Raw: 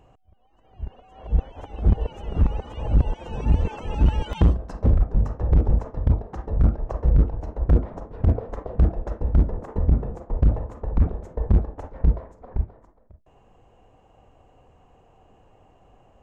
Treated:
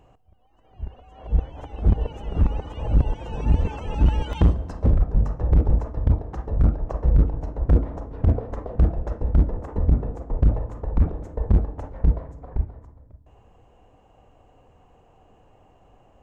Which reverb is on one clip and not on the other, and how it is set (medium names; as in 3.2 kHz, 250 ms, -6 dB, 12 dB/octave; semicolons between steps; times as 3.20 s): FDN reverb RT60 1.6 s, low-frequency decay 1.5×, high-frequency decay 0.75×, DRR 16.5 dB